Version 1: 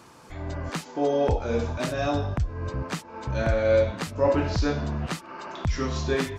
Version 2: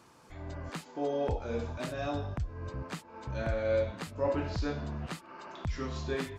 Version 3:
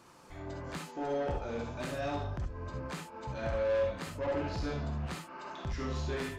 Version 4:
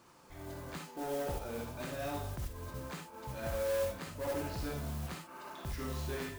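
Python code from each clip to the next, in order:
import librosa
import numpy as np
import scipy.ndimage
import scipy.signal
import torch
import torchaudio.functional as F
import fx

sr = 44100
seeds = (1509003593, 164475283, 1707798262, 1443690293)

y1 = fx.dynamic_eq(x, sr, hz=5800.0, q=4.9, threshold_db=-57.0, ratio=4.0, max_db=-5)
y1 = y1 * 10.0 ** (-8.5 / 20.0)
y2 = 10.0 ** (-31.5 / 20.0) * np.tanh(y1 / 10.0 ** (-31.5 / 20.0))
y2 = fx.rev_gated(y2, sr, seeds[0], gate_ms=90, shape='rising', drr_db=2.0)
y3 = fx.mod_noise(y2, sr, seeds[1], snr_db=14)
y3 = y3 * 10.0 ** (-3.5 / 20.0)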